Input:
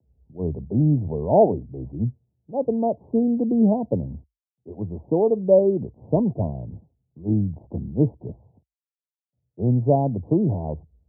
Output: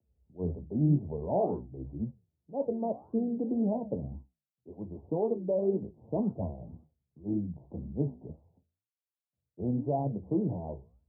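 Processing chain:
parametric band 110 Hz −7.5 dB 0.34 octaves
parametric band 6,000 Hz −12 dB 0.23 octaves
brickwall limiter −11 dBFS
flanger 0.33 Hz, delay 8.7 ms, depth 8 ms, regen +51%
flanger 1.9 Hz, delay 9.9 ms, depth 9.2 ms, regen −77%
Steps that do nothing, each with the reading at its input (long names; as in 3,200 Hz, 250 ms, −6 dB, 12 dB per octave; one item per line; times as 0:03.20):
parametric band 6,000 Hz: nothing at its input above 960 Hz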